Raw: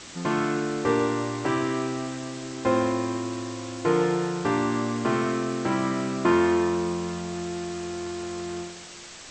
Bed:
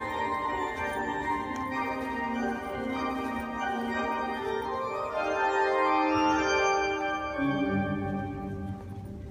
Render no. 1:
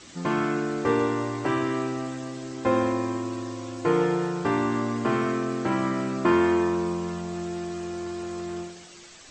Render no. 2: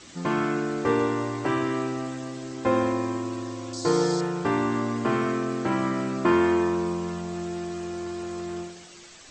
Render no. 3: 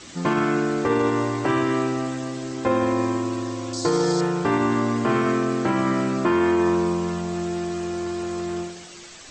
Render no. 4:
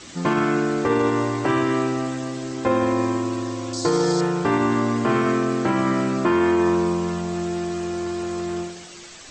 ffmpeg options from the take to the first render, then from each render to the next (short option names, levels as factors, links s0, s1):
-af "afftdn=nr=8:nf=-43"
-filter_complex "[0:a]asettb=1/sr,asplit=3[s0][s1][s2];[s0]atrim=end=3.734[s3];[s1]atrim=start=3.73:end=4.21,asetpts=PTS-STARTPTS,afade=t=in:d=0.004:c=qsin,afade=t=out:st=0.476:d=0.004:c=qsin,highshelf=f=3500:t=q:w=3:g=9.5[s4];[s2]atrim=start=4.206[s5];[s3][s4]acrossfade=d=0.004:c1=hsin:c2=qsin[s6];[s6][s5]acrossfade=d=0.004:c1=qsin:c2=hsin"
-af "acontrast=27,alimiter=limit=0.251:level=0:latency=1:release=50"
-af "volume=1.12"